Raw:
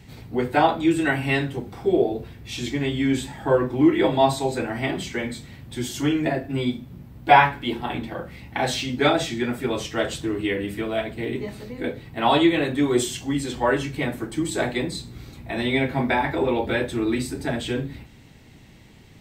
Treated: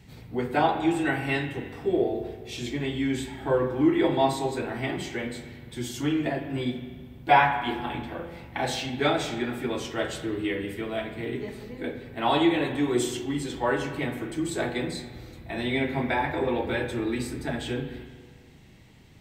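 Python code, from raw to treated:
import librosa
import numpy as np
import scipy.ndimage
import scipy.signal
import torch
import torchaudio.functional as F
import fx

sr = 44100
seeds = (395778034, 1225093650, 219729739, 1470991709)

y = fx.rev_spring(x, sr, rt60_s=1.6, pass_ms=(41, 47), chirp_ms=50, drr_db=7.0)
y = y * librosa.db_to_amplitude(-5.0)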